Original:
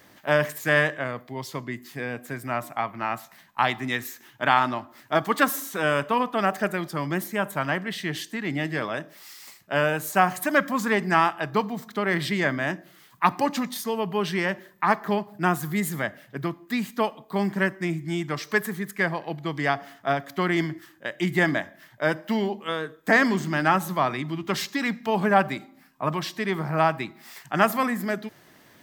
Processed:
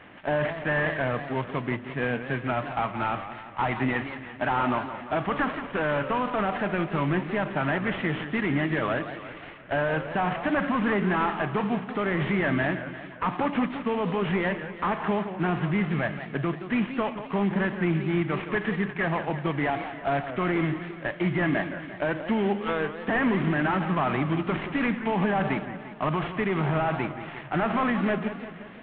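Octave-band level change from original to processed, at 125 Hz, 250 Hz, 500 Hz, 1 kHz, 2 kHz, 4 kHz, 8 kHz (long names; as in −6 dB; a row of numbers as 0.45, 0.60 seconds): +2.0 dB, +1.0 dB, −1.5 dB, −3.0 dB, −3.0 dB, −6.0 dB, below −40 dB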